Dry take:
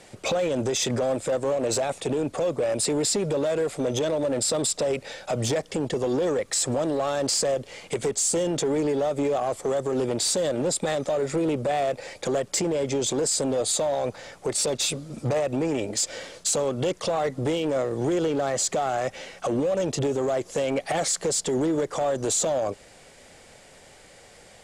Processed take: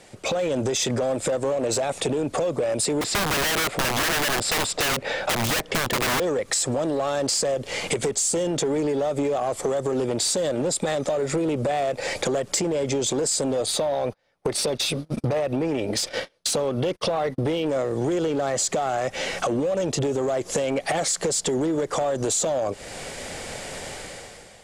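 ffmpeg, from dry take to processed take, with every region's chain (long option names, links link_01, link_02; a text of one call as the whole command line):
ffmpeg -i in.wav -filter_complex "[0:a]asettb=1/sr,asplit=3[link_01][link_02][link_03];[link_01]atrim=end=3.014[link_04];[link_02]atrim=start=3.01:end=6.2,asetpts=PTS-STARTPTS,afade=type=in:duration=0.004:curve=qsin,afade=type=out:start_time=3.186:duration=0.004:curve=qsin,bass=frequency=250:gain=-3,treble=frequency=4000:gain=-13,aeval=exprs='(mod(15.8*val(0)+1,2)-1)/15.8':channel_layout=same[link_05];[link_03]atrim=start=6.196[link_06];[link_04][link_05]acrossfade=duration=0.004:curve1=hsin:curve2=qsin[link_07];[link_07][link_06]acrossfade=duration=0.004:curve1=qsin:curve2=hsin,asettb=1/sr,asplit=3[link_08][link_09][link_10];[link_08]atrim=end=13.664[link_11];[link_09]atrim=start=13.66:end=17.66,asetpts=PTS-STARTPTS,afade=type=in:duration=0.004:curve=qsin,afade=type=out:start_time=3.996:duration=0.004:curve=qsin,agate=range=-39dB:threshold=-37dB:ratio=16:release=100:detection=peak,equalizer=frequency=7300:width=2.9:gain=-13[link_12];[link_10]atrim=start=17.656[link_13];[link_11][link_12]acrossfade=duration=0.004:curve1=hsin:curve2=qsin[link_14];[link_14][link_13]acrossfade=duration=0.004:curve1=qsin:curve2=hsin,dynaudnorm=framelen=120:gausssize=11:maxgain=16dB,alimiter=limit=-11.5dB:level=0:latency=1:release=308,acompressor=threshold=-22dB:ratio=5" out.wav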